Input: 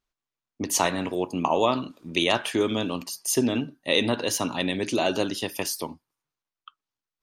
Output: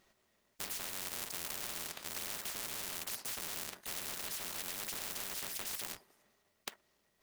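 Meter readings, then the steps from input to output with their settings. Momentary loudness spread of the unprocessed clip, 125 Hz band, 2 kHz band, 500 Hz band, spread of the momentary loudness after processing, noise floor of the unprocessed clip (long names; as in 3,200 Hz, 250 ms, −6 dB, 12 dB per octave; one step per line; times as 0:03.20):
7 LU, −23.0 dB, −14.5 dB, −26.5 dB, 6 LU, below −85 dBFS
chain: sub-harmonics by changed cycles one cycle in 3, inverted
low-shelf EQ 400 Hz −10 dB
downward compressor, threshold −28 dBFS, peak gain reduction 10.5 dB
hollow resonant body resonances 210/390/590/1,900 Hz, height 12 dB, ringing for 30 ms
floating-point word with a short mantissa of 2 bits
soft clipping −27 dBFS, distortion −8 dB
every bin compressed towards the loudest bin 10 to 1
level +9.5 dB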